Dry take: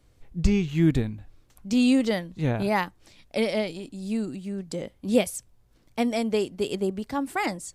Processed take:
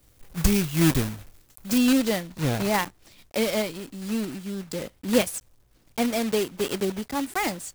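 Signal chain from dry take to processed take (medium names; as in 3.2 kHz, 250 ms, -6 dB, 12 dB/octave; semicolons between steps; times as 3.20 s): block-companded coder 3-bit; treble shelf 8.1 kHz +11 dB, from 1.78 s +2 dB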